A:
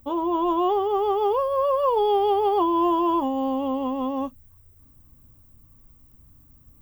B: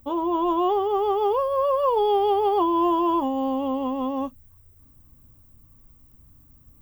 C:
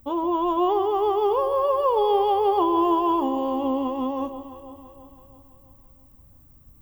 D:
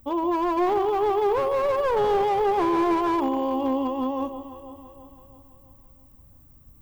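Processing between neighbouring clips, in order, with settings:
no processing that can be heard
delay that swaps between a low-pass and a high-pass 166 ms, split 960 Hz, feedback 72%, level −10 dB
slew-rate limiting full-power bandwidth 67 Hz

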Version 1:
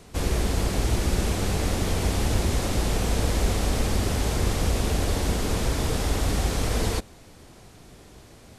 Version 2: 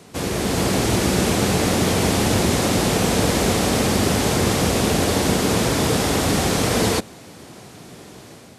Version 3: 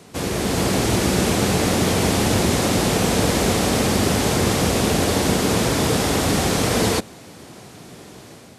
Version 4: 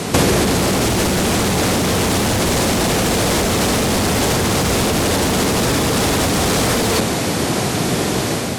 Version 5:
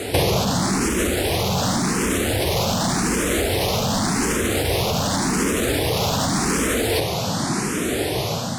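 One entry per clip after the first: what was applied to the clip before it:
Chebyshev high-pass filter 150 Hz, order 2; automatic gain control gain up to 5 dB; level +5 dB
no processing that can be heard
sine wavefolder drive 11 dB, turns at −4.5 dBFS; compressor whose output falls as the input rises −16 dBFS, ratio −1
frequency shifter mixed with the dry sound +0.88 Hz; level −1.5 dB

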